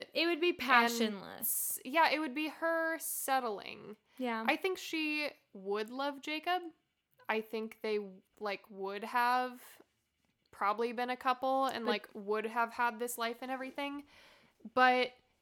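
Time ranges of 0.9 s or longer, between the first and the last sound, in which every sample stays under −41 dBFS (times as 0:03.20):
0:09.52–0:10.61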